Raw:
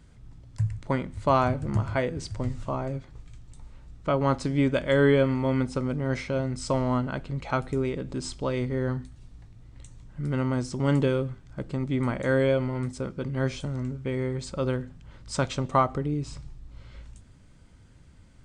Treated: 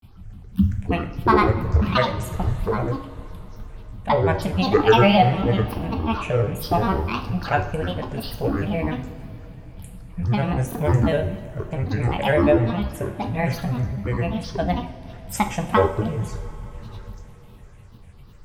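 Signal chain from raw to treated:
phaser with its sweep stopped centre 1,100 Hz, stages 6
granular cloud, spray 16 ms, pitch spread up and down by 12 semitones
coupled-rooms reverb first 0.52 s, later 4.5 s, from −18 dB, DRR 5 dB
level +9 dB

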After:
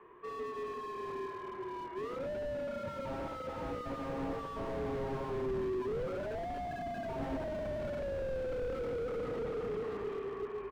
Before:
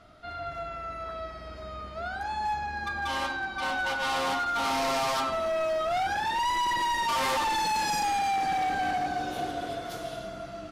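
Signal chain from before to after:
single-sideband voice off tune −260 Hz 440–2,600 Hz
slap from a distant wall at 66 metres, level −9 dB
slew-rate limiting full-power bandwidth 8.4 Hz

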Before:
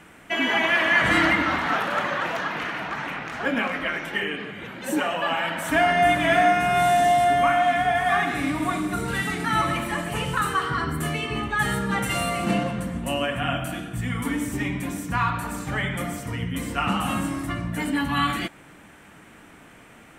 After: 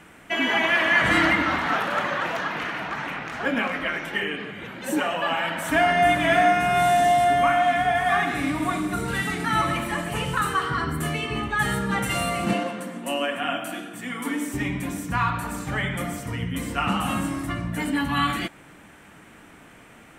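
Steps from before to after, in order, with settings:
0:12.53–0:14.54: high-pass filter 230 Hz 24 dB per octave

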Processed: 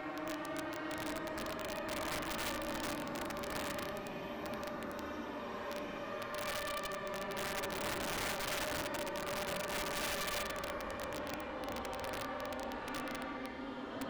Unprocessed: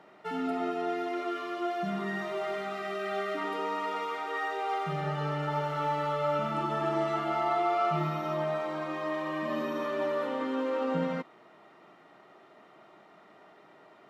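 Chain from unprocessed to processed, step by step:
harmonic generator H 3 −12 dB, 4 −17 dB, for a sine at −17.5 dBFS
extreme stretch with random phases 12×, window 0.05 s, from 0:09.34
wrap-around overflow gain 31 dB
level −1 dB

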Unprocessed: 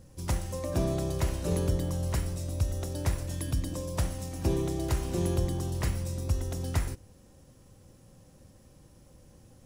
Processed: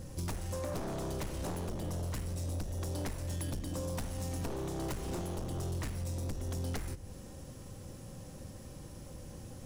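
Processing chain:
wavefolder on the positive side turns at −29.5 dBFS
on a send at −22 dB: convolution reverb RT60 0.55 s, pre-delay 5 ms
on the sum: downward compressor, threshold −40 dBFS, peak gain reduction 16.5 dB
soft clipping −39.5 dBFS, distortion −13 dB
level +8.5 dB

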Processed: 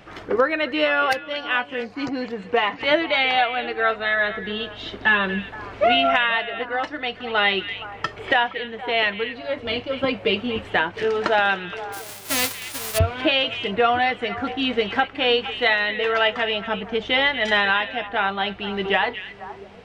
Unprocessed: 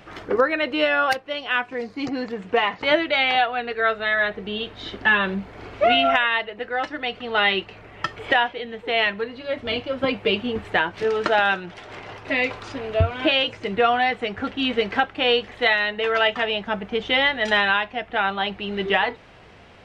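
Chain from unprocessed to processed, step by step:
0:11.92–0:12.97: spectral envelope flattened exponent 0.1
echo through a band-pass that steps 235 ms, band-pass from 2,600 Hz, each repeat −1.4 octaves, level −9 dB

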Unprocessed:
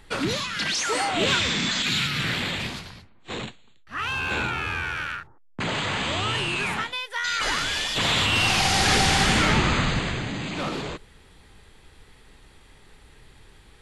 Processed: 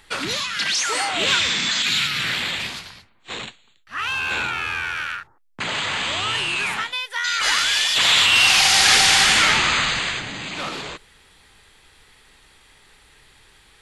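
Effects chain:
tilt shelving filter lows −6 dB, about 670 Hz, from 0:07.43 lows −10 dB, from 0:10.19 lows −6 dB
level −1 dB

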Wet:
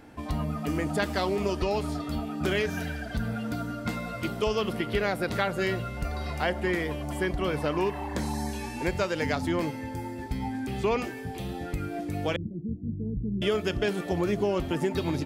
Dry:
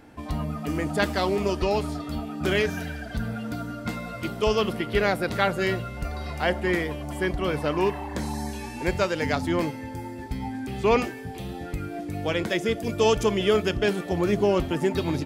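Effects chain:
0:12.36–0:13.42: inverse Chebyshev low-pass filter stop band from 1,400 Hz, stop band 80 dB
downward compressor 3 to 1, threshold −24 dBFS, peak gain reduction 7 dB

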